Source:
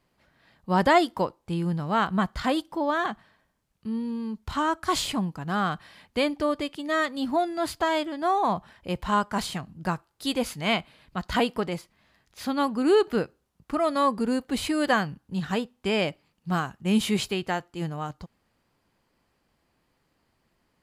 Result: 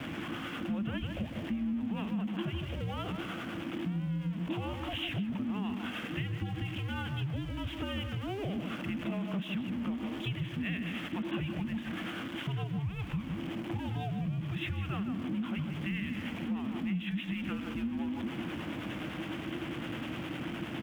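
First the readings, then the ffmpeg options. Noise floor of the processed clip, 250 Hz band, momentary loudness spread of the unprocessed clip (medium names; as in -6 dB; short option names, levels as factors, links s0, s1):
-41 dBFS, -5.5 dB, 10 LU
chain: -filter_complex "[0:a]aeval=exprs='val(0)+0.5*0.0501*sgn(val(0))':c=same,acrossover=split=320|3000[s0][s1][s2];[s1]acompressor=threshold=0.00501:ratio=2[s3];[s0][s3][s2]amix=inputs=3:normalize=0,acrossover=split=770[s4][s5];[s4]aeval=exprs='val(0)*(1-0.5/2+0.5/2*cos(2*PI*9.8*n/s))':c=same[s6];[s5]aeval=exprs='val(0)*(1-0.5/2-0.5/2*cos(2*PI*9.8*n/s))':c=same[s7];[s6][s7]amix=inputs=2:normalize=0,afreqshift=-47,asplit=2[s8][s9];[s9]adelay=154,lowpass=f=2400:p=1,volume=0.447,asplit=2[s10][s11];[s11]adelay=154,lowpass=f=2400:p=1,volume=0.27,asplit=2[s12][s13];[s13]adelay=154,lowpass=f=2400:p=1,volume=0.27[s14];[s8][s10][s12][s14]amix=inputs=4:normalize=0,aresample=8000,aresample=44100,asplit=2[s15][s16];[s16]aeval=exprs='val(0)*gte(abs(val(0)),0.00944)':c=same,volume=0.501[s17];[s15][s17]amix=inputs=2:normalize=0,afreqshift=-350,highpass=88,acompressor=threshold=0.0398:ratio=5,volume=0.668"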